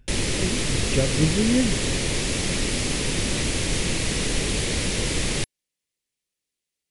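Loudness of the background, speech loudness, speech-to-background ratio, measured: -24.5 LUFS, -25.5 LUFS, -1.0 dB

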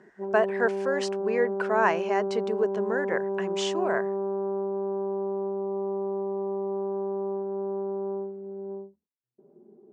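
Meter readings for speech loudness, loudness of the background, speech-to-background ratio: -28.5 LUFS, -31.0 LUFS, 2.5 dB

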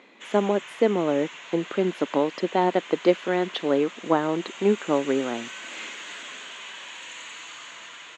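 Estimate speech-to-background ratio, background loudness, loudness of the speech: 13.5 dB, -38.5 LUFS, -25.0 LUFS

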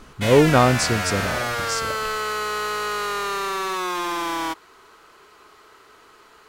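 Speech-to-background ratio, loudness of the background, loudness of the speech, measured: 5.0 dB, -25.0 LUFS, -20.0 LUFS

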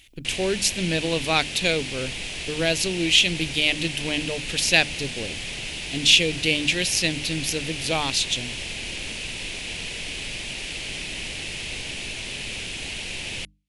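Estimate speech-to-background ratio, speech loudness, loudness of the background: 8.5 dB, -22.0 LUFS, -30.5 LUFS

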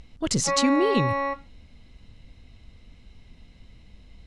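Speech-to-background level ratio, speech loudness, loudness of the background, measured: 3.5 dB, -24.0 LUFS, -27.5 LUFS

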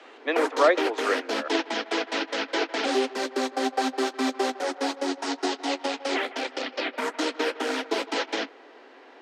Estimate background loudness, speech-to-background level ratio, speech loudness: -28.0 LUFS, 2.5 dB, -25.5 LUFS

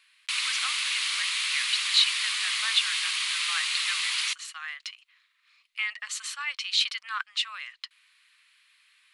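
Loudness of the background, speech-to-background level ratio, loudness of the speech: -26.5 LUFS, -3.5 dB, -30.0 LUFS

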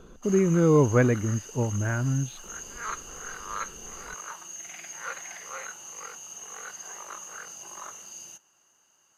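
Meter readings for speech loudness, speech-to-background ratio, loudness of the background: -24.0 LUFS, 14.5 dB, -38.5 LUFS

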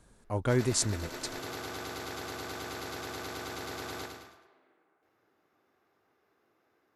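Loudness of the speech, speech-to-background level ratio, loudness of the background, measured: -30.5 LUFS, 9.5 dB, -40.0 LUFS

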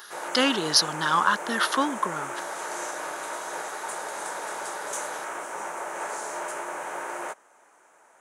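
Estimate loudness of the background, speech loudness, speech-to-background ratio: -33.5 LUFS, -24.0 LUFS, 9.5 dB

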